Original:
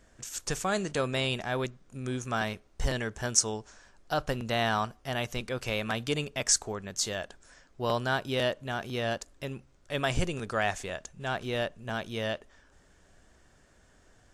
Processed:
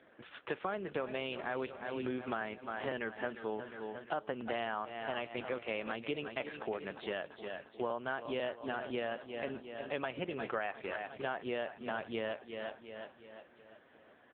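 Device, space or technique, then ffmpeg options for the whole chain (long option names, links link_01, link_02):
voicemail: -filter_complex "[0:a]asettb=1/sr,asplit=3[link_01][link_02][link_03];[link_01]atrim=end=10.764[link_04];[link_02]atrim=start=10.76:end=11.37,asetpts=PTS-STARTPTS,afade=type=in:duration=0.004:curve=qsin,afade=type=out:start_time=0.606:duration=0.004:curve=qsin,agate=range=-27dB:threshold=-48dB:ratio=16:detection=peak[link_05];[link_03]atrim=start=11.366[link_06];[link_04][link_05]acrossfade=duration=0.004:curve1=hsin:curve2=qsin[link_07];[link_07][link_06]acrossfade=duration=0.004:curve1=qsin:curve2=hsin,highpass=300,lowpass=3000,equalizer=frequency=240:width_type=o:width=1.1:gain=2.5,aecho=1:1:355|710|1065|1420|1775:0.251|0.126|0.0628|0.0314|0.0157,acompressor=threshold=-38dB:ratio=6,volume=5dB" -ar 8000 -c:a libopencore_amrnb -b:a 6700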